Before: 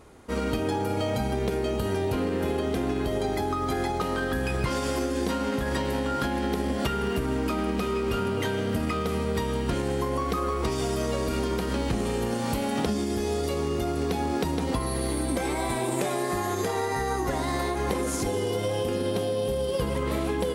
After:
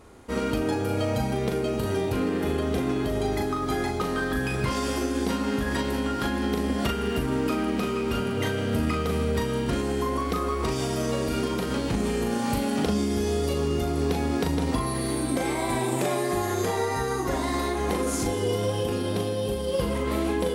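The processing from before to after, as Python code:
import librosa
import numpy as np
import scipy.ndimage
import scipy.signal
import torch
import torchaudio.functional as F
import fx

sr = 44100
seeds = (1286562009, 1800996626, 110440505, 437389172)

y = fx.doubler(x, sr, ms=39.0, db=-4.5)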